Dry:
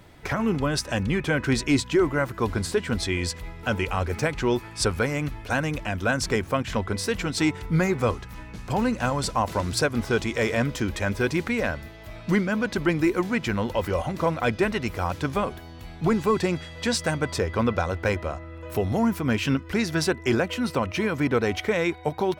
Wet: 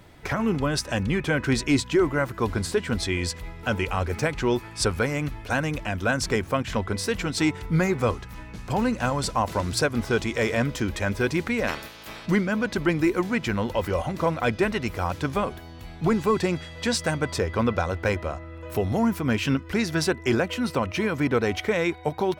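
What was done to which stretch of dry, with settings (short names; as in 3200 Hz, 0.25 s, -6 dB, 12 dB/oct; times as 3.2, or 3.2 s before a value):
11.67–12.25 spectral limiter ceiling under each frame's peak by 24 dB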